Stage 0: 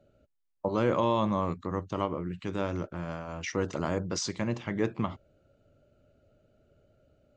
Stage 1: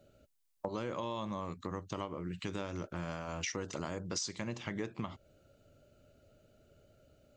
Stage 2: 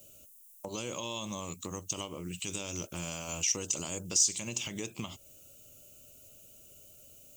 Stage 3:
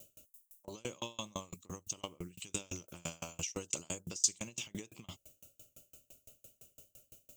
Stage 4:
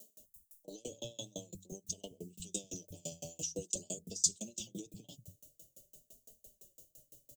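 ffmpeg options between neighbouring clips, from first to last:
-af "highshelf=f=3200:g=11.5,acompressor=threshold=0.0178:ratio=6"
-af "highshelf=f=2200:t=q:w=3:g=7,alimiter=level_in=1.12:limit=0.0631:level=0:latency=1:release=67,volume=0.891,aexciter=amount=4.7:drive=9.4:freq=6200"
-af "aeval=exprs='val(0)*pow(10,-34*if(lt(mod(5.9*n/s,1),2*abs(5.9)/1000),1-mod(5.9*n/s,1)/(2*abs(5.9)/1000),(mod(5.9*n/s,1)-2*abs(5.9)/1000)/(1-2*abs(5.9)/1000))/20)':c=same,volume=1.5"
-filter_complex "[0:a]asuperstop=centerf=1500:order=8:qfactor=0.55,flanger=delay=4.5:depth=2.5:regen=24:speed=0.48:shape=sinusoidal,acrossover=split=160[s0][s1];[s0]adelay=190[s2];[s2][s1]amix=inputs=2:normalize=0,volume=1.58"

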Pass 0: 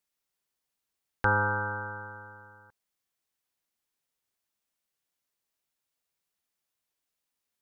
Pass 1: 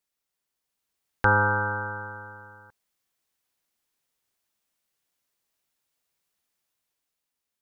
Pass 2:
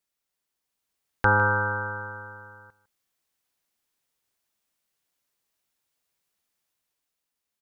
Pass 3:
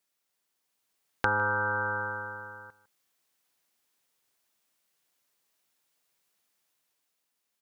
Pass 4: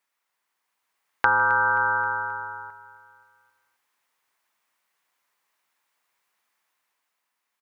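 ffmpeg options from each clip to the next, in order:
-af "dynaudnorm=f=130:g=13:m=1.78"
-af "aecho=1:1:155:0.141"
-af "highpass=f=170:p=1,acompressor=threshold=0.0355:ratio=4,volume=1.5"
-af "equalizer=f=125:t=o:w=1:g=-3,equalizer=f=1000:t=o:w=1:g=11,equalizer=f=2000:t=o:w=1:g=8,aecho=1:1:265|530|795|1060:0.126|0.0667|0.0354|0.0187,volume=0.75"

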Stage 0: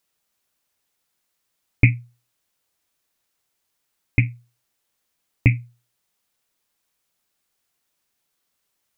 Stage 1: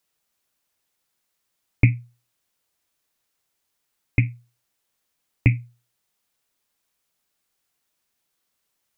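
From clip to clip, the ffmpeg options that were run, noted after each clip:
-filter_complex "[0:a]acrossover=split=450[s0][s1];[s1]acompressor=threshold=0.0891:ratio=6[s2];[s0][s2]amix=inputs=2:normalize=0,volume=0.891"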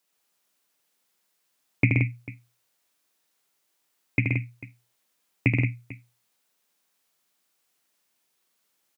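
-af "highpass=170,aecho=1:1:77|126|150|175|445:0.562|0.562|0.119|0.447|0.119"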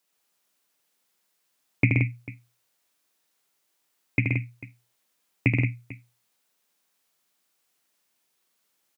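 -af anull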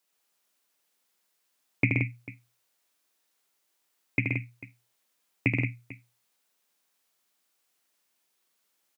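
-af "lowshelf=f=110:g=-9.5,volume=0.841"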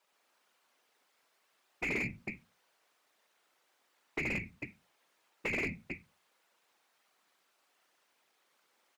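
-filter_complex "[0:a]afftfilt=real='hypot(re,im)*cos(2*PI*random(0))':imag='hypot(re,im)*sin(2*PI*random(1))':win_size=512:overlap=0.75,afftfilt=real='re*lt(hypot(re,im),0.112)':imag='im*lt(hypot(re,im),0.112)':win_size=1024:overlap=0.75,asplit=2[s0][s1];[s1]highpass=f=720:p=1,volume=15.8,asoftclip=type=tanh:threshold=0.075[s2];[s0][s2]amix=inputs=2:normalize=0,lowpass=f=1100:p=1,volume=0.501,volume=1.19"

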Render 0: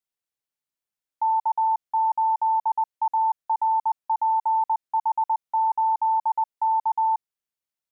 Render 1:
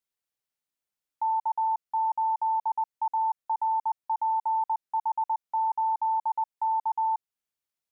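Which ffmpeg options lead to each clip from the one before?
-af "alimiter=limit=0.075:level=0:latency=1:release=283"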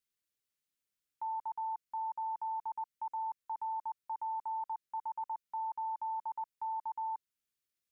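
-af "equalizer=f=790:t=o:w=0.69:g=-14"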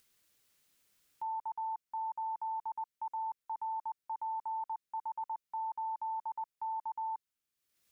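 -af "acompressor=mode=upward:threshold=0.00126:ratio=2.5"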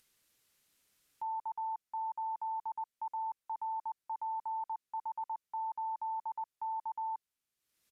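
-af "aresample=32000,aresample=44100"

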